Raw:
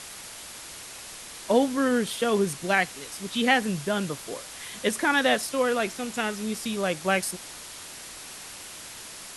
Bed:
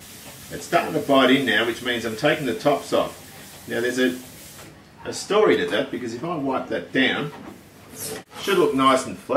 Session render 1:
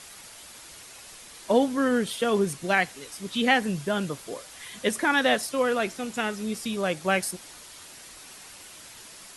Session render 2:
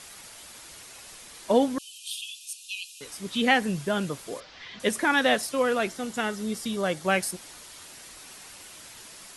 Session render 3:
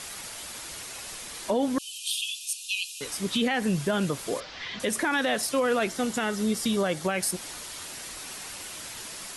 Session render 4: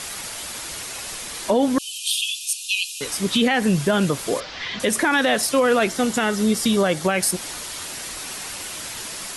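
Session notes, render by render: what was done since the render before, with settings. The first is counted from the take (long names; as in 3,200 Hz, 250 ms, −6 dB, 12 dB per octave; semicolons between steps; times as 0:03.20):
broadband denoise 6 dB, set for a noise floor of −42 dBFS
0:01.78–0:03.01: linear-phase brick-wall high-pass 2,400 Hz; 0:04.40–0:04.80: Butterworth low-pass 5,200 Hz; 0:05.88–0:07.05: notch filter 2,500 Hz, Q 7.6
in parallel at +1 dB: downward compressor, threshold −31 dBFS, peak gain reduction 15 dB; on the sum: brickwall limiter −16.5 dBFS, peak gain reduction 10.5 dB
level +7 dB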